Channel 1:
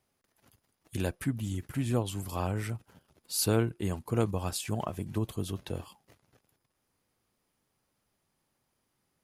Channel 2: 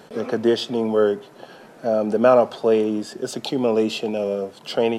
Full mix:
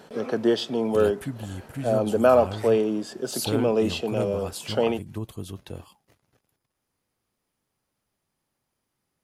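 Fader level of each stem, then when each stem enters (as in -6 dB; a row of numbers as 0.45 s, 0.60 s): -1.5 dB, -3.0 dB; 0.00 s, 0.00 s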